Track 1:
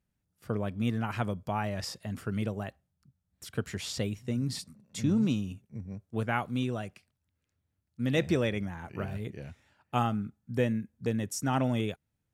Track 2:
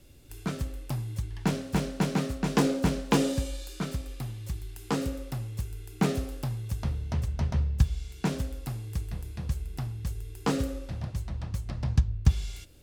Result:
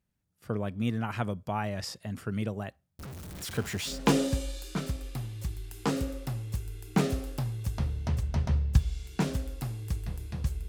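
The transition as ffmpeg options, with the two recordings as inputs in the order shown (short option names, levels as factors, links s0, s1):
-filter_complex "[0:a]asettb=1/sr,asplit=3[s0][s1][s2];[s0]atrim=end=2.994[s3];[s1]atrim=start=2.99:end=4.01,asetpts=PTS-STARTPTS,afade=t=in:d=0.004:c=qsin,afade=t=out:st=1.016:d=0.004:c=qsin,aeval=exprs='val(0)+0.5*0.0168*sgn(val(0))':c=same[s4];[s2]atrim=start=4.006[s5];[s3][s4]acrossfade=d=0.004:c1=hsin:c2=qsin[s6];[s6][s5]acrossfade=d=0.004:c1=qsin:c2=hsin,apad=whole_dur=10.68,atrim=end=10.68,atrim=end=4.01,asetpts=PTS-STARTPTS[s7];[1:a]atrim=start=2.9:end=9.73,asetpts=PTS-STARTPTS[s8];[s7][s8]acrossfade=d=0.16:c1=tri:c2=tri"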